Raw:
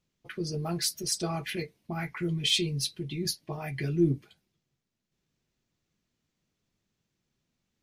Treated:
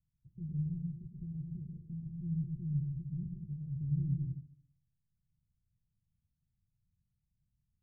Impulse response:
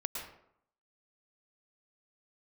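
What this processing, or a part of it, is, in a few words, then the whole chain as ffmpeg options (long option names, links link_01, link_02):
club heard from the street: -filter_complex "[0:a]alimiter=limit=-22.5dB:level=0:latency=1:release=95,lowpass=frequency=140:width=0.5412,lowpass=frequency=140:width=1.3066[link_01];[1:a]atrim=start_sample=2205[link_02];[link_01][link_02]afir=irnorm=-1:irlink=0,volume=3.5dB"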